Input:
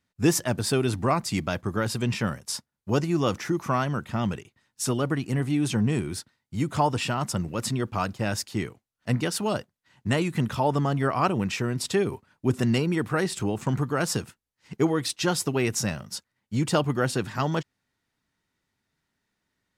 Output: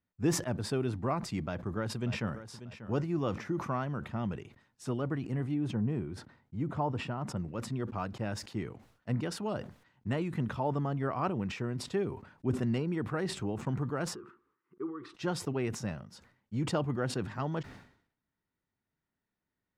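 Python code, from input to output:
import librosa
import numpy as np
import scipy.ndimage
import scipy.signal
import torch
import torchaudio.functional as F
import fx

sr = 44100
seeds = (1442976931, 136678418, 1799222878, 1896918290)

y = fx.echo_throw(x, sr, start_s=1.42, length_s=1.02, ms=590, feedback_pct=30, wet_db=-13.0)
y = fx.high_shelf(y, sr, hz=2200.0, db=-10.5, at=(5.54, 7.37))
y = fx.double_bandpass(y, sr, hz=660.0, octaves=1.7, at=(14.14, 15.14), fade=0.02)
y = fx.lowpass(y, sr, hz=1400.0, slope=6)
y = fx.sustainer(y, sr, db_per_s=100.0)
y = y * 10.0 ** (-7.5 / 20.0)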